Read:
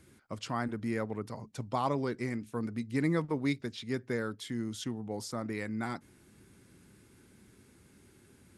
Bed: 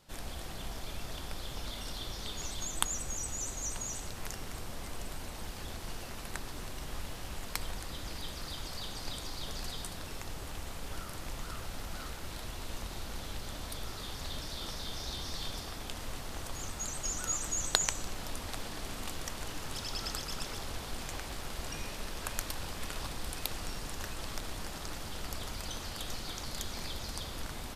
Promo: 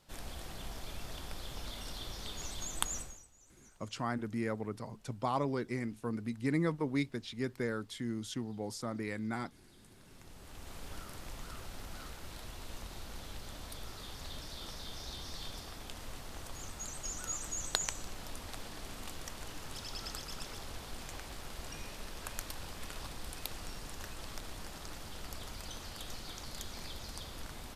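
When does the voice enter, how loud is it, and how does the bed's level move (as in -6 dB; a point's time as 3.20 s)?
3.50 s, -2.0 dB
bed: 2.99 s -3 dB
3.30 s -26 dB
9.65 s -26 dB
10.76 s -5 dB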